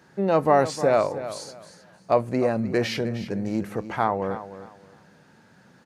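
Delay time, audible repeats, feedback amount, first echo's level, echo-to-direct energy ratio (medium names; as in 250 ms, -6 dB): 309 ms, 2, 24%, -13.0 dB, -12.5 dB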